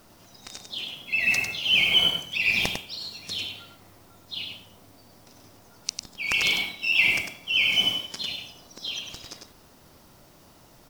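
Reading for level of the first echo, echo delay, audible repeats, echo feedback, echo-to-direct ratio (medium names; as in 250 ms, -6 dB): -5.5 dB, 100 ms, 1, no regular repeats, -5.5 dB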